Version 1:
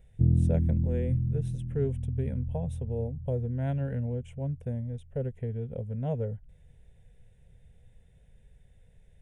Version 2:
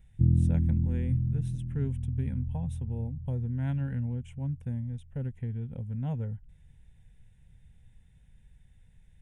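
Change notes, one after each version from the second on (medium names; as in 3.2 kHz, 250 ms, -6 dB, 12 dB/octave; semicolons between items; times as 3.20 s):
master: add high-order bell 520 Hz -12 dB 1 oct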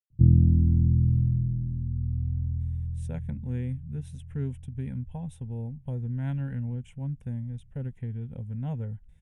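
speech: entry +2.60 s; background +5.0 dB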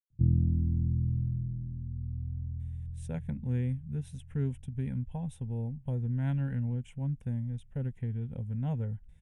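background -7.5 dB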